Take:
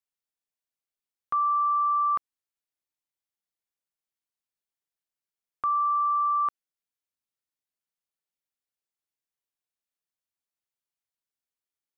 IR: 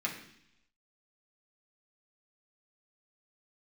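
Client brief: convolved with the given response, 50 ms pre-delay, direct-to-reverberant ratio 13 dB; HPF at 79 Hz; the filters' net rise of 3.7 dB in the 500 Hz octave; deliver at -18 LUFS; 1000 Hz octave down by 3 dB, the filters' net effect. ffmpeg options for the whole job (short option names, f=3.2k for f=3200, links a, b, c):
-filter_complex "[0:a]highpass=79,equalizer=f=500:t=o:g=6,equalizer=f=1k:t=o:g=-4.5,asplit=2[a][b];[1:a]atrim=start_sample=2205,adelay=50[c];[b][c]afir=irnorm=-1:irlink=0,volume=-18dB[d];[a][d]amix=inputs=2:normalize=0,volume=11.5dB"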